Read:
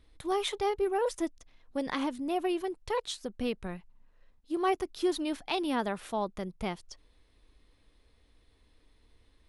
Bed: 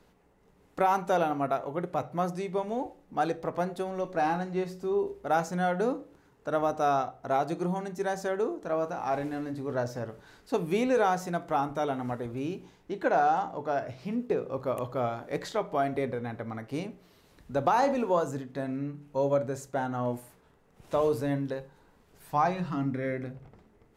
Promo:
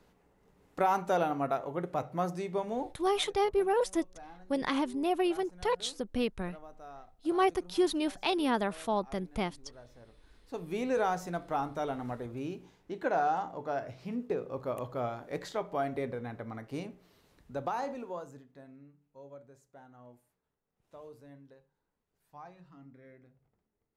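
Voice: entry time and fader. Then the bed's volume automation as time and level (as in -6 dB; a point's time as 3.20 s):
2.75 s, +1.5 dB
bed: 2.87 s -2.5 dB
3.09 s -23 dB
9.85 s -23 dB
10.94 s -4.5 dB
17.21 s -4.5 dB
19.08 s -23.5 dB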